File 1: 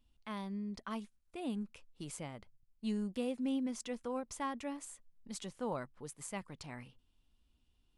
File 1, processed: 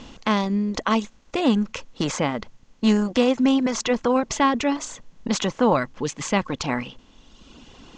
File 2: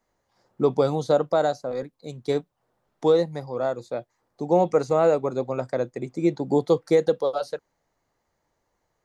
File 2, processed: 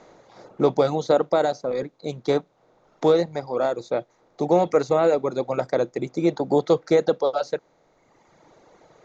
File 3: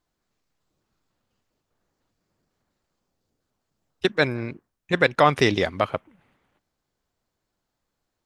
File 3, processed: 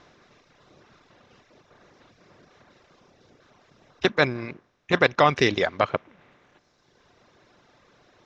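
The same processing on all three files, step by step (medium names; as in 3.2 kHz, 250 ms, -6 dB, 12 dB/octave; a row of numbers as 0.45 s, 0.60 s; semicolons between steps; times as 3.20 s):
spectral levelling over time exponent 0.6; elliptic low-pass 6.8 kHz, stop band 50 dB; reverb removal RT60 1.6 s; normalise loudness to -23 LUFS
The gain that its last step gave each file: +19.0 dB, +0.5 dB, -1.0 dB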